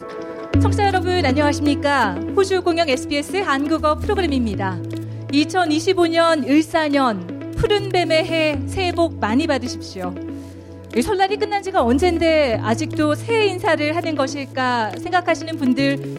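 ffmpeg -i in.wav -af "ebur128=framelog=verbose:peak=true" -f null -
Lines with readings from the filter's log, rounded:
Integrated loudness:
  I:         -18.9 LUFS
  Threshold: -29.1 LUFS
Loudness range:
  LRA:         2.8 LU
  Threshold: -39.1 LUFS
  LRA low:   -20.8 LUFS
  LRA high:  -18.0 LUFS
True peak:
  Peak:       -4.5 dBFS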